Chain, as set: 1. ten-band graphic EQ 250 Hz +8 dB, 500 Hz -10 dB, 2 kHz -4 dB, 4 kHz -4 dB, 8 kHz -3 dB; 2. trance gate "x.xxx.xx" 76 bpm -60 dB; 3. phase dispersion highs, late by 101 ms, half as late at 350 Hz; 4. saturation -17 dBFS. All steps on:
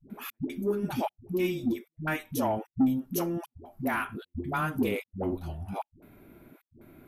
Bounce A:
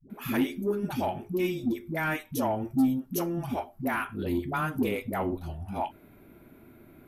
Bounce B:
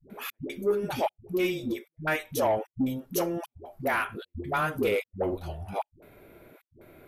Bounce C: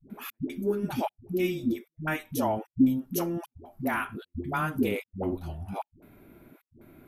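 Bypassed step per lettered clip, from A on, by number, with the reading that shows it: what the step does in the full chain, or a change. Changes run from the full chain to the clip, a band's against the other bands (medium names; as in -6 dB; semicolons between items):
2, momentary loudness spread change -3 LU; 1, 250 Hz band -6.5 dB; 4, crest factor change +4.5 dB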